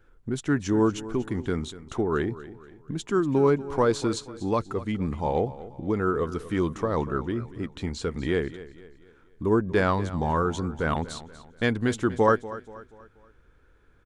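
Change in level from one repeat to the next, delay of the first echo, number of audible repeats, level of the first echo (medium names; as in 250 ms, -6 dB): -7.5 dB, 240 ms, 3, -16.0 dB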